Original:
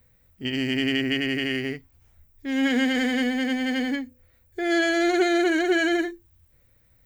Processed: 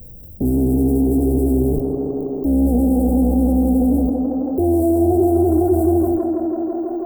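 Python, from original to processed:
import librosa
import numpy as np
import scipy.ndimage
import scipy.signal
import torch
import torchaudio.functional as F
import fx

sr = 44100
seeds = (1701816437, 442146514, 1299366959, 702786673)

p1 = fx.octave_divider(x, sr, octaves=2, level_db=-2.0)
p2 = fx.leveller(p1, sr, passes=1)
p3 = fx.fuzz(p2, sr, gain_db=47.0, gate_db=-42.0)
p4 = p2 + F.gain(torch.from_numpy(p3), -8.5).numpy()
p5 = scipy.signal.sosfilt(scipy.signal.cheby1(4, 1.0, [780.0, 7300.0], 'bandstop', fs=sr, output='sos'), p4)
p6 = fx.fixed_phaser(p5, sr, hz=3000.0, stages=4)
p7 = p6 + fx.echo_tape(p6, sr, ms=163, feedback_pct=86, wet_db=-8.0, lp_hz=3900.0, drive_db=3.0, wow_cents=31, dry=0)
p8 = fx.env_flatten(p7, sr, amount_pct=50)
y = F.gain(torch.from_numpy(p8), -1.0).numpy()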